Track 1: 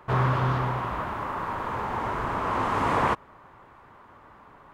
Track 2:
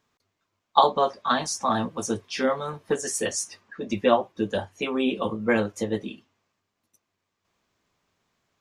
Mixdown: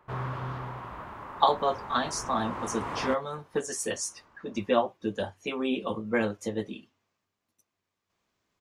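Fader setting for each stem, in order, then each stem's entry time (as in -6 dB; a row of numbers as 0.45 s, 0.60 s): -10.5 dB, -4.5 dB; 0.00 s, 0.65 s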